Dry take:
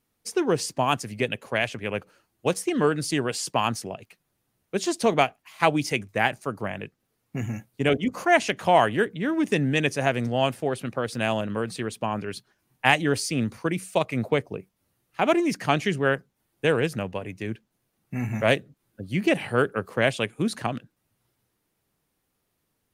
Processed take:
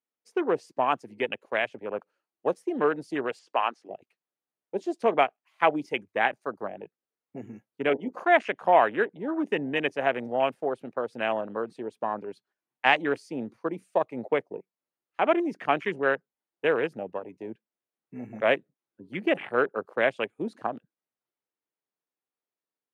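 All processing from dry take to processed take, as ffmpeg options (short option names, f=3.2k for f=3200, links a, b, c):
-filter_complex "[0:a]asettb=1/sr,asplit=3[a][b][c];[a]atrim=end=3.394[d];[b]atrim=start=3.39:end=3.9,asetpts=PTS-STARTPTS,afade=t=in:d=0.004:c=qsin,afade=t=out:st=0.506:d=0.004:c=qsin,acrossover=split=4500[e][f];[f]acompressor=threshold=-38dB:ratio=4:attack=1:release=60[g];[e][g]amix=inputs=2:normalize=0,aeval=exprs='val(0)+0.002*(sin(2*PI*60*n/s)+sin(2*PI*2*60*n/s)/2+sin(2*PI*3*60*n/s)/3+sin(2*PI*4*60*n/s)/4+sin(2*PI*5*60*n/s)/5)':c=same,highpass=410,lowpass=7.7k[h];[c]atrim=start=3.896[i];[d][h]acrossfade=d=0.004:c1=hsin:c2=qsin[j];[j][i]acrossfade=d=0.004:c1=qsin:c2=hsin,afwtdn=0.0282,highpass=360,highshelf=f=5k:g=-11.5"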